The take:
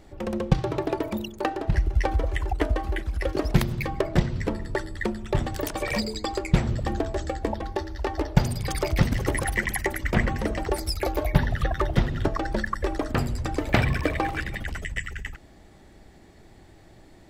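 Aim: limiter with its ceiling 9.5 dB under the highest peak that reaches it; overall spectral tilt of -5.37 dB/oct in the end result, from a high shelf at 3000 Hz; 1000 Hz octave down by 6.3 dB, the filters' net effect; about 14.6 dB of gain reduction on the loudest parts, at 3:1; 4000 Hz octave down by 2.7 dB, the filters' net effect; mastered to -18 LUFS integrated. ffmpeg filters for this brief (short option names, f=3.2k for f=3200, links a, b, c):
-af "equalizer=f=1k:t=o:g=-9,highshelf=f=3k:g=5,equalizer=f=4k:t=o:g=-7.5,acompressor=threshold=-37dB:ratio=3,volume=22.5dB,alimiter=limit=-5dB:level=0:latency=1"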